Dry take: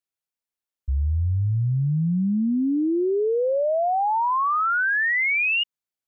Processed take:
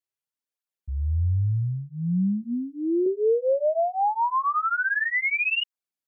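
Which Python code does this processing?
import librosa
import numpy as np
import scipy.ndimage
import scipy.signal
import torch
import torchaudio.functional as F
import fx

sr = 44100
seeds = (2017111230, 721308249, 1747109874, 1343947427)

y = fx.lowpass(x, sr, hz=1000.0, slope=24, at=(1.6, 2.41), fade=0.02)
y = fx.low_shelf(y, sr, hz=300.0, db=9.5, at=(3.06, 4.59))
y = fx.flanger_cancel(y, sr, hz=0.79, depth_ms=5.1)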